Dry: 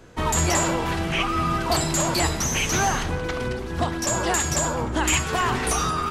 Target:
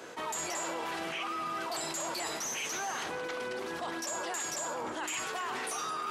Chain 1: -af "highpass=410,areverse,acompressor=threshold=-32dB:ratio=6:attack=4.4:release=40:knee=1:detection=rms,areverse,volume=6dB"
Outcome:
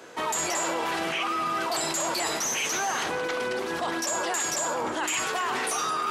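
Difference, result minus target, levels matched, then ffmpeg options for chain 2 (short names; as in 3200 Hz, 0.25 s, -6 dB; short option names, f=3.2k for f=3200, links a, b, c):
compressor: peak gain reduction -8 dB
-af "highpass=410,areverse,acompressor=threshold=-41.5dB:ratio=6:attack=4.4:release=40:knee=1:detection=rms,areverse,volume=6dB"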